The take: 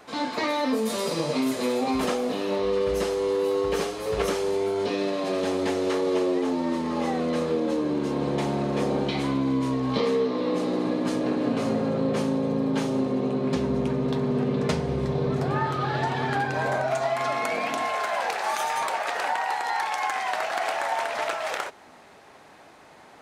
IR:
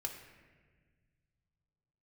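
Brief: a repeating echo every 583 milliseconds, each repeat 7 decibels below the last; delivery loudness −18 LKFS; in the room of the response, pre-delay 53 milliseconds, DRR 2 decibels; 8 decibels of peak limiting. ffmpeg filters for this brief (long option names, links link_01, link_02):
-filter_complex "[0:a]alimiter=limit=-20.5dB:level=0:latency=1,aecho=1:1:583|1166|1749|2332|2915:0.447|0.201|0.0905|0.0407|0.0183,asplit=2[link_01][link_02];[1:a]atrim=start_sample=2205,adelay=53[link_03];[link_02][link_03]afir=irnorm=-1:irlink=0,volume=-1.5dB[link_04];[link_01][link_04]amix=inputs=2:normalize=0,volume=8dB"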